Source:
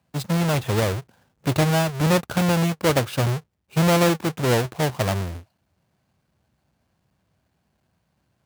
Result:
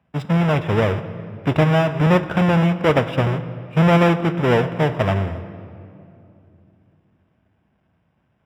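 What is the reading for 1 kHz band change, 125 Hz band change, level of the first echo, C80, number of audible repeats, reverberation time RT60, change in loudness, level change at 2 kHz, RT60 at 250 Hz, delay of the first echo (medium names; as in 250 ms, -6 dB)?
+4.0 dB, +4.0 dB, no echo, 13.5 dB, no echo, 2.7 s, +3.5 dB, +3.5 dB, 3.8 s, no echo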